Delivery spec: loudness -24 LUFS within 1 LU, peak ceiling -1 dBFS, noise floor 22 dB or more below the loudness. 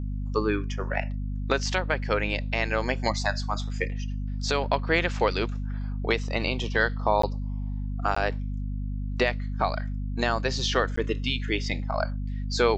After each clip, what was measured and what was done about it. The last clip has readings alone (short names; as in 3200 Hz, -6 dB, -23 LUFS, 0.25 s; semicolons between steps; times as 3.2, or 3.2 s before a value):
dropouts 3; longest dropout 14 ms; hum 50 Hz; harmonics up to 250 Hz; hum level -28 dBFS; loudness -28.0 LUFS; peak -9.0 dBFS; loudness target -24.0 LUFS
-> interpolate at 7.22/8.15/10.96, 14 ms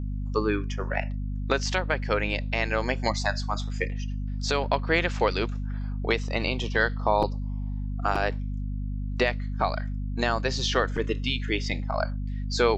dropouts 0; hum 50 Hz; harmonics up to 250 Hz; hum level -28 dBFS
-> de-hum 50 Hz, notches 5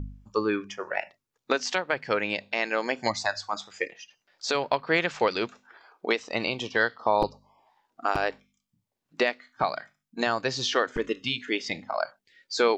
hum none; loudness -28.5 LUFS; peak -10.0 dBFS; loudness target -24.0 LUFS
-> gain +4.5 dB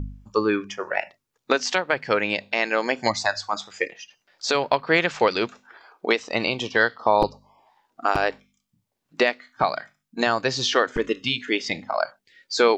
loudness -24.0 LUFS; peak -5.5 dBFS; noise floor -79 dBFS